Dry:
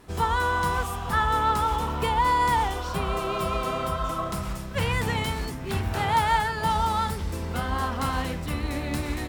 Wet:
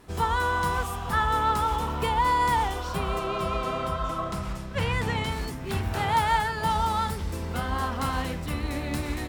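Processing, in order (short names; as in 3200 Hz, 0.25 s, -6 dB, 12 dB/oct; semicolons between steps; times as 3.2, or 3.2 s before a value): 3.19–5.32 high shelf 9800 Hz -11.5 dB; gain -1 dB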